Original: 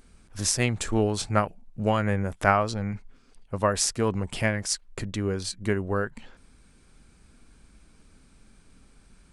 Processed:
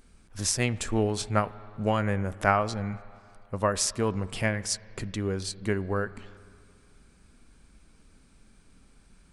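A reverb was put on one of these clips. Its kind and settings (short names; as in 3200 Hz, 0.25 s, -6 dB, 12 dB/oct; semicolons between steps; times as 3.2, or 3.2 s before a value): spring tank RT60 2.5 s, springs 31/37 ms, chirp 55 ms, DRR 17.5 dB; gain -2 dB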